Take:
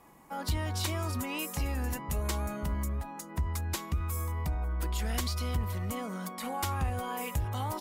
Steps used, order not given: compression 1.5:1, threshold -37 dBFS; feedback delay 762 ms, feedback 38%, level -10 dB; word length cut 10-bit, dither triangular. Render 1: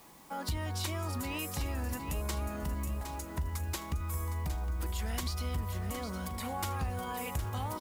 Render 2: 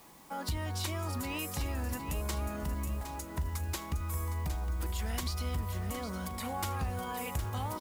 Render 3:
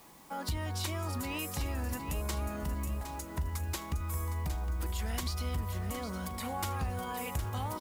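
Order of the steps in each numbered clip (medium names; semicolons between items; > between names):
word length cut > feedback delay > compression; compression > word length cut > feedback delay; word length cut > compression > feedback delay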